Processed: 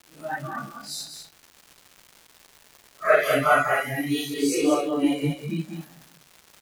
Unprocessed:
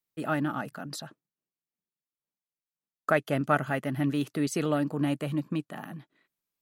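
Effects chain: phase scrambler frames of 0.2 s; spectral noise reduction 20 dB; 3.23–4.34 tilt +2.5 dB/oct; crackle 340/s -45 dBFS; echo 0.196 s -7.5 dB; maximiser +14 dB; gain -6 dB

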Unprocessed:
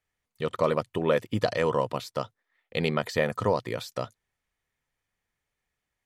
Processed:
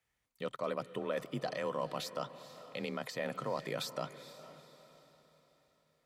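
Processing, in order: low shelf 330 Hz -3 dB; reverse; compressor 12:1, threshold -32 dBFS, peak gain reduction 14 dB; reverse; limiter -26 dBFS, peak gain reduction 6.5 dB; frequency shift +31 Hz; diffused feedback echo 0.451 s, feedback 43%, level -13.5 dB; gain +1 dB

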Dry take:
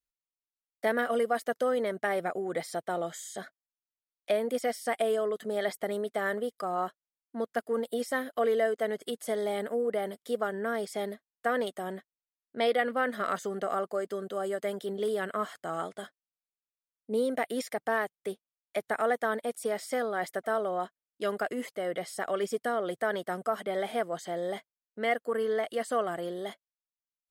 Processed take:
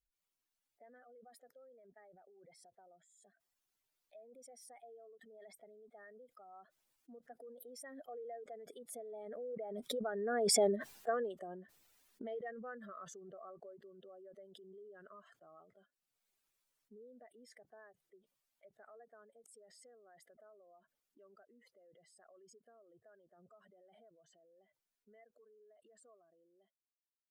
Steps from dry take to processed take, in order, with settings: spectral contrast raised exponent 1.9; Doppler pass-by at 10.67, 12 m/s, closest 1.6 m; backwards sustainer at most 29 dB/s; gain +4.5 dB

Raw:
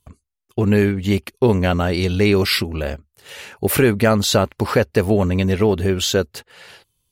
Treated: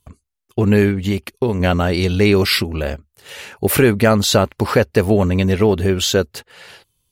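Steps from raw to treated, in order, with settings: 0.94–1.6 compressor 4:1, threshold -17 dBFS, peak gain reduction 6.5 dB; gain +2 dB

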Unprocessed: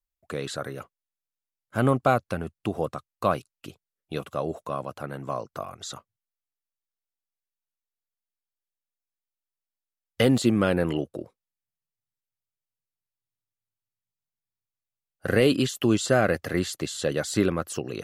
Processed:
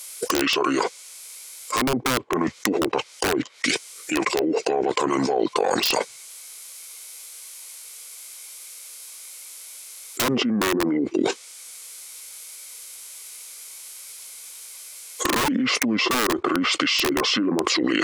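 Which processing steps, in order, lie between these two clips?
HPF 220 Hz 12 dB/oct; treble ducked by the level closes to 1000 Hz, closed at -23 dBFS; tilt +4 dB/oct; small resonant body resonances 480/1500/3100 Hz, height 9 dB, ringing for 20 ms; formant shift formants -6 st; high shelf 3200 Hz +5 dB; wrapped overs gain 17 dB; fast leveller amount 100%; gain -1.5 dB

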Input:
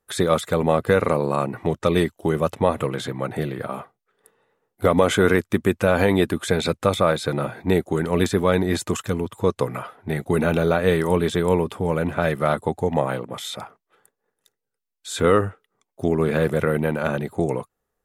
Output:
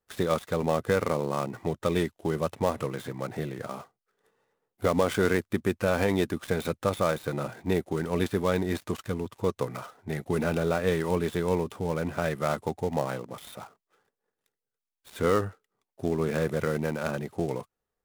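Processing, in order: switching dead time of 0.081 ms; gain -7 dB

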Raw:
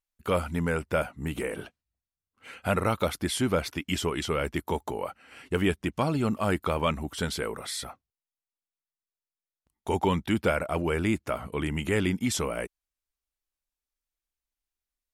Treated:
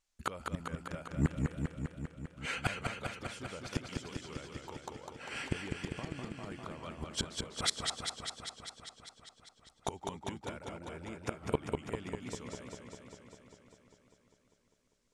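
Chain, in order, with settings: flipped gate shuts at -24 dBFS, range -28 dB; synth low-pass 7100 Hz, resonance Q 1.6; warbling echo 0.199 s, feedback 73%, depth 83 cents, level -4 dB; gain +7 dB

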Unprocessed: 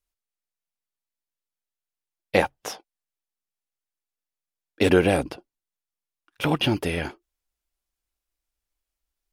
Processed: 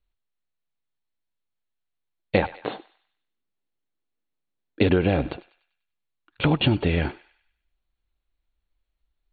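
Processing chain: brick-wall FIR low-pass 4500 Hz; low shelf 230 Hz +9.5 dB; thinning echo 98 ms, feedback 47%, high-pass 970 Hz, level -18 dB; compressor 6:1, threshold -17 dBFS, peak gain reduction 8.5 dB; 2.54–4.81 bell 300 Hz +8.5 dB 1.6 oct; gain +1.5 dB

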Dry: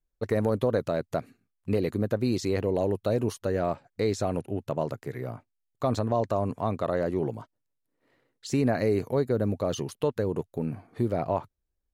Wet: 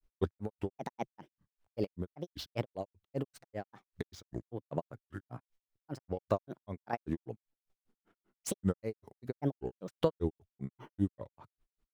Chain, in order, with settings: median filter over 5 samples; compressor 4:1, threshold -33 dBFS, peak gain reduction 11 dB; chopper 1.3 Hz, depth 60%, duty 40%; grains 0.113 s, grains 5.1/s, spray 10 ms, pitch spread up and down by 7 st; gain +8 dB

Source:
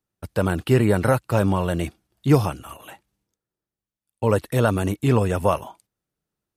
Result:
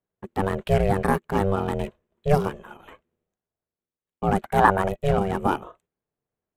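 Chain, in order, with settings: Wiener smoothing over 9 samples; ring modulator 290 Hz; 4.42–4.89 band shelf 1100 Hz +9.5 dB

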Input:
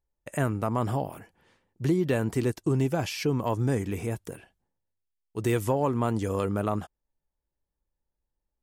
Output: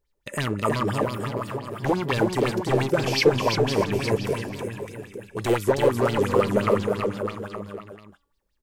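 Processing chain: bell 740 Hz -11.5 dB 0.39 oct; de-hum 284.6 Hz, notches 34; in parallel at +1 dB: compressor, threshold -43 dBFS, peak gain reduction 20.5 dB; on the sum: wavefolder -20.5 dBFS; resonator 200 Hz, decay 0.19 s, harmonics all, mix 50%; bouncing-ball echo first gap 0.32 s, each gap 0.9×, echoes 5; LFO bell 5.8 Hz 400–4800 Hz +17 dB; gain +3.5 dB

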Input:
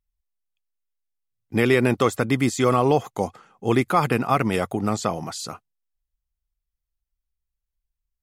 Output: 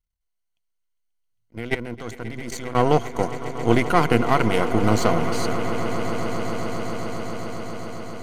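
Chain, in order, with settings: half-wave gain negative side -12 dB; 4.74–5.26 sample leveller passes 1; high shelf 12000 Hz -9 dB; 1.55–2.75 level quantiser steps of 18 dB; ripple EQ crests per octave 1.9, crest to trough 8 dB; swelling echo 0.134 s, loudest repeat 8, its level -16 dB; attack slew limiter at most 450 dB/s; gain +3 dB

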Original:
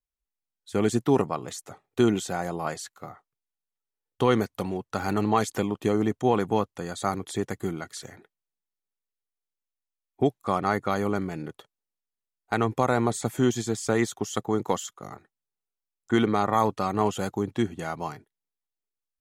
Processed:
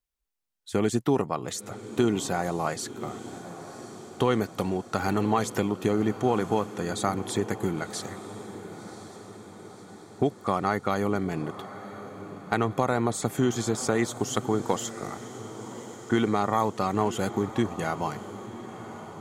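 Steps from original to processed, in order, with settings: compressor 2:1, threshold -27 dBFS, peak gain reduction 7 dB; diffused feedback echo 1.05 s, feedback 58%, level -13.5 dB; gain +3.5 dB

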